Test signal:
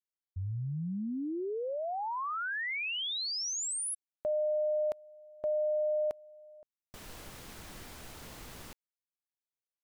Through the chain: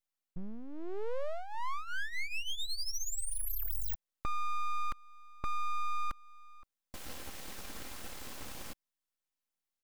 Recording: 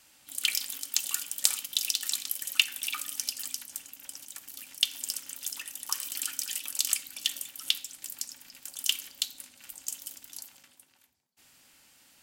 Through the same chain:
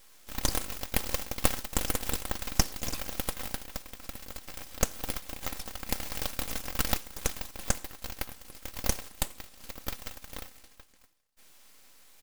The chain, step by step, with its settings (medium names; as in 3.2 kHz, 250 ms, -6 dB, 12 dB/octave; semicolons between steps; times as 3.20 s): comb 3.8 ms, depth 62%; in parallel at -3 dB: compression, threshold -42 dBFS; on the sum: full-wave rectifier; trim -1 dB